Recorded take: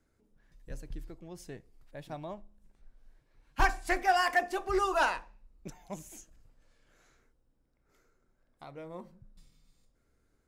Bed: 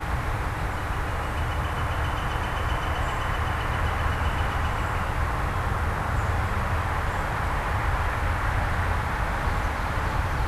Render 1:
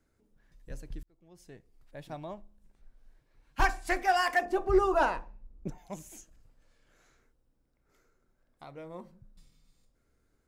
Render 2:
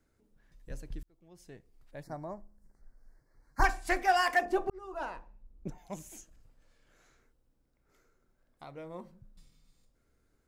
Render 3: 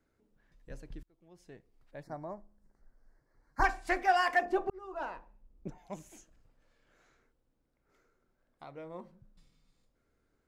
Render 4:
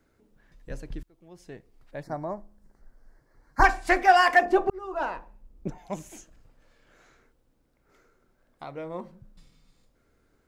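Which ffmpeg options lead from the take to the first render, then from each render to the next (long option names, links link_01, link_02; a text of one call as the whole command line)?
ffmpeg -i in.wav -filter_complex "[0:a]asettb=1/sr,asplit=3[link_01][link_02][link_03];[link_01]atrim=end=4.454[link_04];[link_02]atrim=start=4.45:end=5.78,asetpts=PTS-STARTPTS,afade=type=in:duration=0.004:curve=qsin,afade=type=out:start_time=1.326:duration=0.004:curve=qsin,tiltshelf=frequency=1100:gain=8[link_05];[link_03]atrim=start=5.776[link_06];[link_04][link_05]acrossfade=duration=0.004:curve1=hsin:curve2=qsin[link_07];[link_07][link_06]acrossfade=duration=0.004:curve1=qsin:curve2=hsin,asplit=2[link_08][link_09];[link_08]atrim=end=1.03,asetpts=PTS-STARTPTS,afade=type=out:start_time=1.026:duration=0.004:curve=hsin[link_10];[link_09]atrim=start=1.03,asetpts=PTS-STARTPTS,afade=type=in:duration=0.97[link_11];[link_10][link_11]concat=n=2:v=0:a=1" out.wav
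ffmpeg -i in.wav -filter_complex "[0:a]asplit=3[link_01][link_02][link_03];[link_01]afade=type=out:start_time=2.01:duration=0.02[link_04];[link_02]asuperstop=centerf=3000:order=8:qfactor=1.3,afade=type=in:start_time=2.01:duration=0.02,afade=type=out:start_time=3.63:duration=0.02[link_05];[link_03]afade=type=in:start_time=3.63:duration=0.02[link_06];[link_04][link_05][link_06]amix=inputs=3:normalize=0,asplit=2[link_07][link_08];[link_07]atrim=end=4.7,asetpts=PTS-STARTPTS,afade=type=out:start_time=4.696:duration=0.004:curve=hsin[link_09];[link_08]atrim=start=4.7,asetpts=PTS-STARTPTS,afade=type=in:duration=1.27[link_10];[link_09][link_10]concat=n=2:v=0:a=1" out.wav
ffmpeg -i in.wav -af "lowpass=frequency=3400:poles=1,lowshelf=frequency=150:gain=-6" out.wav
ffmpeg -i in.wav -af "volume=9dB" out.wav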